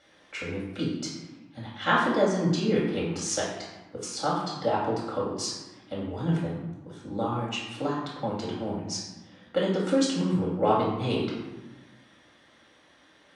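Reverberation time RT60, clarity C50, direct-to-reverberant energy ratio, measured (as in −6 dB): 1.2 s, 1.5 dB, −6.5 dB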